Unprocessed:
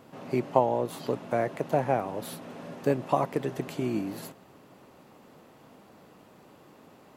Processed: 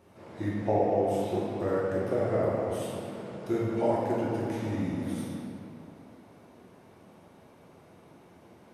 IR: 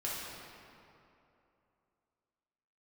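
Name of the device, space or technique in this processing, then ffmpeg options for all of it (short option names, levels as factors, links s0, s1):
slowed and reverbed: -filter_complex "[0:a]asetrate=36162,aresample=44100[s0];[1:a]atrim=start_sample=2205[s1];[s0][s1]afir=irnorm=-1:irlink=0,volume=0.596"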